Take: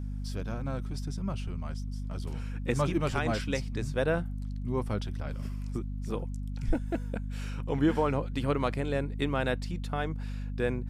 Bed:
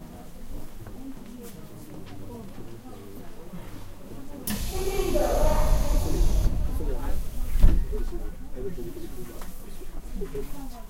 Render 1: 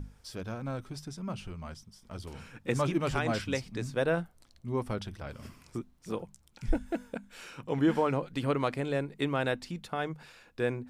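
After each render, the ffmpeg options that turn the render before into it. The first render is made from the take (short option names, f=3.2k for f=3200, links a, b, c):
-af "bandreject=f=50:t=h:w=6,bandreject=f=100:t=h:w=6,bandreject=f=150:t=h:w=6,bandreject=f=200:t=h:w=6,bandreject=f=250:t=h:w=6"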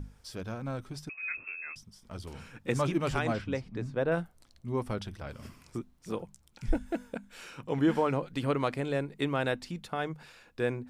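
-filter_complex "[0:a]asettb=1/sr,asplit=3[a][b][c];[a]atrim=end=1.094[d];[b]atrim=start=1.09:end=1.76,asetpts=PTS-STARTPTS,afade=t=in:d=0.004:c=qsin,afade=t=out:st=0.666:d=0.004:c=qsin,lowpass=f=2.3k:t=q:w=0.5098,lowpass=f=2.3k:t=q:w=0.6013,lowpass=f=2.3k:t=q:w=0.9,lowpass=f=2.3k:t=q:w=2.563,afreqshift=-2700[e];[c]atrim=start=1.756[f];[d][e]acrossfade=d=0.004:c1=hsin:c2=qsin[g];[g][f]acrossfade=d=0.004:c1=qsin:c2=hsin,asettb=1/sr,asplit=3[h][i][j];[h]atrim=end=3.334[k];[i]atrim=start=3.33:end=4.12,asetpts=PTS-STARTPTS,afade=t=in:d=0.004:c=qsin,afade=t=out:st=0.786:d=0.004:c=qsin,lowpass=f=1.4k:p=1[l];[j]atrim=start=4.116[m];[k][l]acrossfade=d=0.004:c1=hsin:c2=qsin[n];[n][m]acrossfade=d=0.004:c1=qsin:c2=hsin"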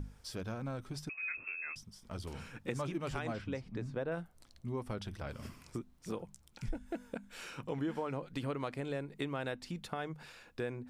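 -af "acompressor=threshold=-37dB:ratio=3"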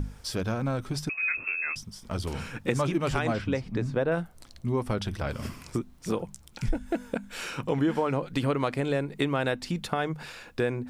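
-af "volume=11dB"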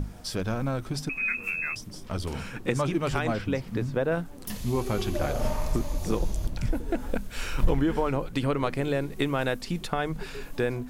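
-filter_complex "[1:a]volume=-6.5dB[a];[0:a][a]amix=inputs=2:normalize=0"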